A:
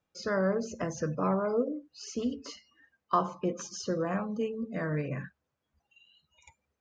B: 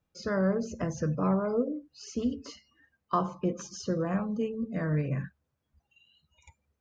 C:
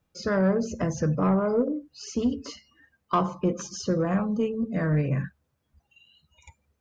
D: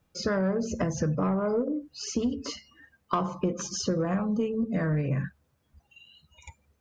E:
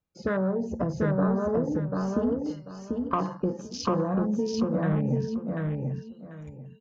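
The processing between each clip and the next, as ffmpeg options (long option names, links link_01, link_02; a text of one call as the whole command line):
ffmpeg -i in.wav -af "lowshelf=frequency=180:gain=12,volume=-2dB" out.wav
ffmpeg -i in.wav -af "asoftclip=type=tanh:threshold=-19dB,volume=5.5dB" out.wav
ffmpeg -i in.wav -af "acompressor=threshold=-29dB:ratio=4,volume=4dB" out.wav
ffmpeg -i in.wav -af "afwtdn=0.0141,aecho=1:1:741|1482|2223:0.708|0.163|0.0375" out.wav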